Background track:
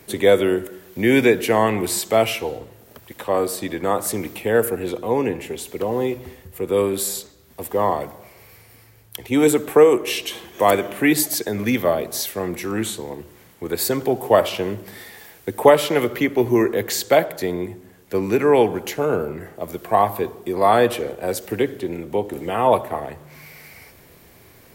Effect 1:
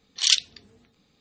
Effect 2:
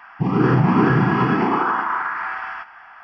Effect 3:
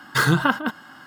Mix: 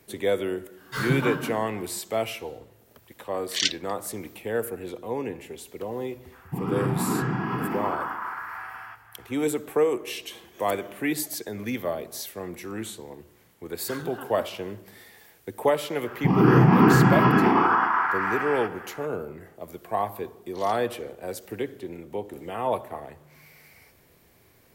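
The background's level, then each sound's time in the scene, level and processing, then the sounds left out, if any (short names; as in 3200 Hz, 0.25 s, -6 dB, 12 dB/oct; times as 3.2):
background track -10 dB
0.77 add 3 -17.5 dB + shoebox room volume 75 m³, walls mixed, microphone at 1.6 m
3.33 add 1 -7 dB + bell 1800 Hz +12 dB 0.78 oct
6.32 add 2 -10.5 dB
13.73 add 3 -17.5 dB + limiter -11 dBFS
16.04 add 2 -0.5 dB
20.37 add 1 -14 dB + compressor 2.5:1, threshold -36 dBFS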